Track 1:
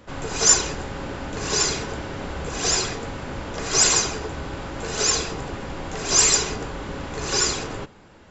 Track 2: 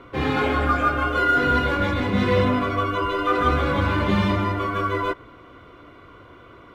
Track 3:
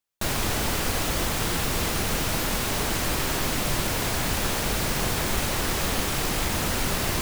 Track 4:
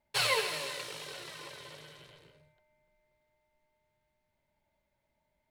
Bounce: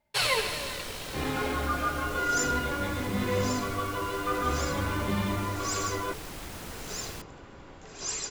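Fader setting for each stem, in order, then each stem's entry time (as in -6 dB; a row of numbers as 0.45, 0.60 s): -17.0, -9.0, -15.5, +2.5 dB; 1.90, 1.00, 0.00, 0.00 s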